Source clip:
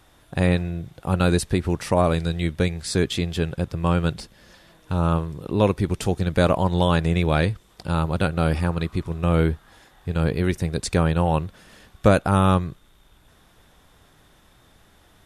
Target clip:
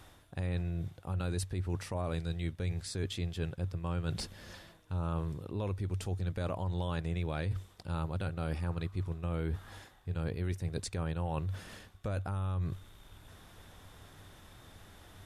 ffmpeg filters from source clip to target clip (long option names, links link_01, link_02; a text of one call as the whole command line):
ffmpeg -i in.wav -af "equalizer=frequency=95:width=6.4:gain=11.5,alimiter=limit=-11dB:level=0:latency=1:release=30,areverse,acompressor=threshold=-35dB:ratio=4,areverse" out.wav